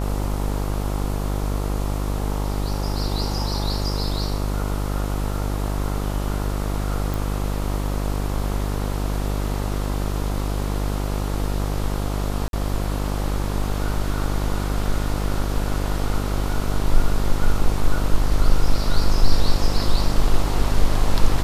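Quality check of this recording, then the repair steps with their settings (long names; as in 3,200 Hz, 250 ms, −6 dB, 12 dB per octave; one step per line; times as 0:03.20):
mains buzz 50 Hz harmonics 28 −24 dBFS
0:07.14: click
0:12.48–0:12.53: drop-out 52 ms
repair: click removal
hum removal 50 Hz, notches 28
repair the gap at 0:12.48, 52 ms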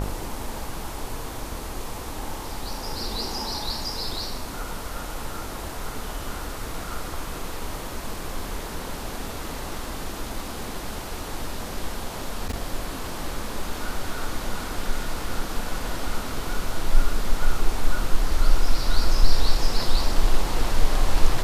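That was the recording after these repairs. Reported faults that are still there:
none of them is left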